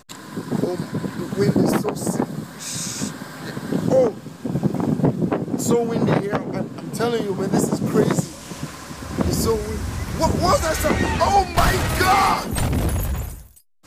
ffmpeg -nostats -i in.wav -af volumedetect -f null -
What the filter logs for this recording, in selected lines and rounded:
mean_volume: -21.3 dB
max_volume: -6.5 dB